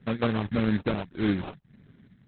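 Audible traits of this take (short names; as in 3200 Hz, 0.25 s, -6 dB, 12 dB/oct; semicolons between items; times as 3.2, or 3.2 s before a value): phasing stages 6, 1.7 Hz, lowest notch 430–4100 Hz; aliases and images of a low sample rate 1900 Hz, jitter 20%; Opus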